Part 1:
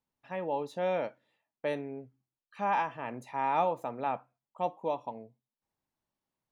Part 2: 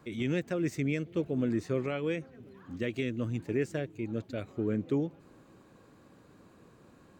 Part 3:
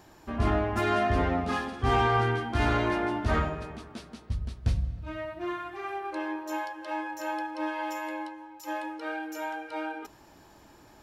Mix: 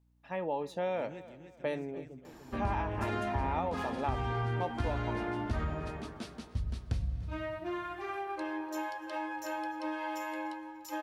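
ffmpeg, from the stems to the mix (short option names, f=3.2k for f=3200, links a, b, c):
-filter_complex "[0:a]aeval=exprs='val(0)+0.000398*(sin(2*PI*60*n/s)+sin(2*PI*2*60*n/s)/2+sin(2*PI*3*60*n/s)/3+sin(2*PI*4*60*n/s)/4+sin(2*PI*5*60*n/s)/5)':c=same,volume=0.5dB,asplit=3[a][b][c];[b]volume=-21dB[d];[1:a]adelay=800,volume=-17dB,asplit=2[e][f];[f]volume=-7dB[g];[2:a]acrossover=split=210[h][i];[i]acompressor=threshold=-35dB:ratio=2.5[j];[h][j]amix=inputs=2:normalize=0,adelay=2250,volume=-0.5dB,asplit=2[k][l];[l]volume=-22.5dB[m];[c]apad=whole_len=352584[n];[e][n]sidechaingate=range=-13dB:threshold=-59dB:ratio=16:detection=peak[o];[d][g][m]amix=inputs=3:normalize=0,aecho=0:1:294|588|882|1176|1470:1|0.37|0.137|0.0507|0.0187[p];[a][o][k][p]amix=inputs=4:normalize=0,acompressor=threshold=-29dB:ratio=5"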